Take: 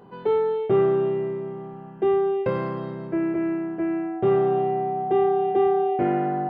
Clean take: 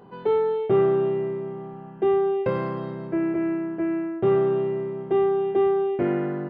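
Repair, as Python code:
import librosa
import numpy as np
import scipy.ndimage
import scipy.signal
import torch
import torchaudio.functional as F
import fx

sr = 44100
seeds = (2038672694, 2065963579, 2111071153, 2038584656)

y = fx.notch(x, sr, hz=750.0, q=30.0)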